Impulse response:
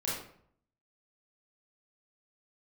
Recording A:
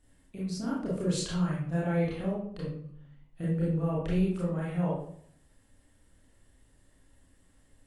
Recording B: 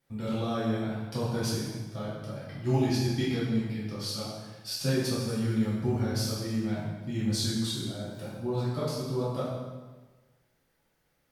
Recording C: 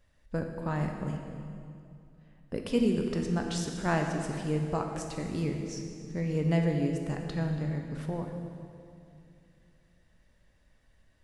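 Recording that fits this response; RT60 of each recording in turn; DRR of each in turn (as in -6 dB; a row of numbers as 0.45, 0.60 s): A; 0.60, 1.3, 2.5 s; -7.5, -10.0, 2.5 dB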